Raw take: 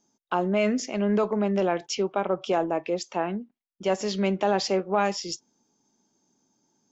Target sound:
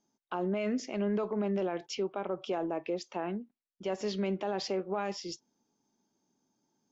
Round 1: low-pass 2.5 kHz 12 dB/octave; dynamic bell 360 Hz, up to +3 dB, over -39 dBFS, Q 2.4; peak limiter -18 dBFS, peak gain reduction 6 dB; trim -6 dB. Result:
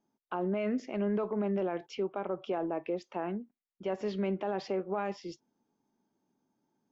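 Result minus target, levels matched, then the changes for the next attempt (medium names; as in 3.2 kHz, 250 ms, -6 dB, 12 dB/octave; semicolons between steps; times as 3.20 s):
4 kHz band -7.5 dB
change: low-pass 5.3 kHz 12 dB/octave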